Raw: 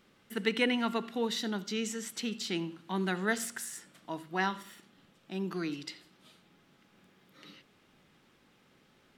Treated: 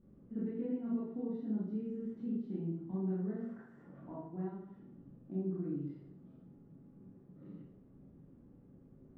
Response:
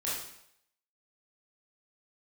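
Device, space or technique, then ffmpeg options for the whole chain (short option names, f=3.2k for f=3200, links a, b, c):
television next door: -filter_complex "[0:a]asettb=1/sr,asplit=3[a][b][c];[a]atrim=end=3.364[d];[b]atrim=start=3.36:end=4.22,asetpts=PTS-STARTPTS,afade=t=in:d=0.004:c=qsin,afade=t=out:st=0.856:d=0.004:c=qsin,equalizer=f=1.1k:t=o:w=2.3:g=13.5[e];[c]atrim=start=4.216[f];[d][e]acrossfade=d=0.004:c1=hsin:c2=qsin[g];[g][f]acrossfade=d=0.004:c1=qsin:c2=hsin,acompressor=threshold=-43dB:ratio=3,lowpass=250[h];[1:a]atrim=start_sample=2205[i];[h][i]afir=irnorm=-1:irlink=0,volume=8dB"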